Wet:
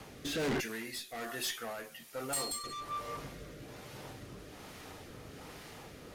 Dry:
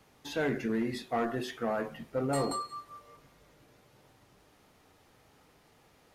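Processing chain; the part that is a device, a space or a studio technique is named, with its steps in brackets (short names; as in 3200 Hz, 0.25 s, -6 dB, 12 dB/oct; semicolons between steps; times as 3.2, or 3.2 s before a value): 0.6–2.64 pre-emphasis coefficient 0.97; overdriven rotary cabinet (tube stage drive 47 dB, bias 0.2; rotary speaker horn 1.2 Hz); gain +16.5 dB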